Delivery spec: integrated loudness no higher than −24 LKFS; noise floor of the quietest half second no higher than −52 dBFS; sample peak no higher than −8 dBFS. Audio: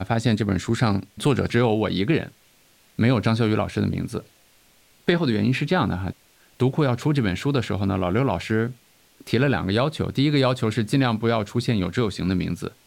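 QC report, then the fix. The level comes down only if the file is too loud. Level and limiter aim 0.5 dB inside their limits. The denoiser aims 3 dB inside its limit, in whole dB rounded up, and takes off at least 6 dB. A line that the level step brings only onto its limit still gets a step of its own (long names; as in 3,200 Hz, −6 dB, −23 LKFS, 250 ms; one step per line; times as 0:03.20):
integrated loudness −23.0 LKFS: out of spec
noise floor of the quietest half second −58 dBFS: in spec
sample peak −6.0 dBFS: out of spec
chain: level −1.5 dB
brickwall limiter −8.5 dBFS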